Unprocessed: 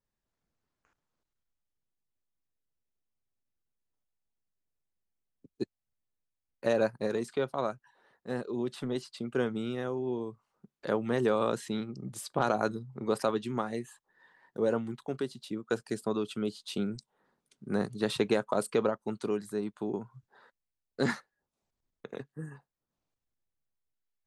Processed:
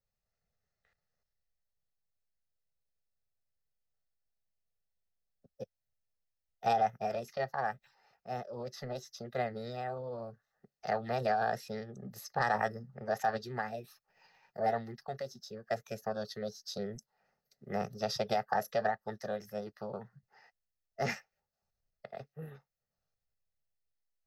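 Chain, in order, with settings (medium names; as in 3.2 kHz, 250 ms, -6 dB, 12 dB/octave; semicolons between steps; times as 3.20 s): static phaser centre 1.5 kHz, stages 8; formant shift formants +5 st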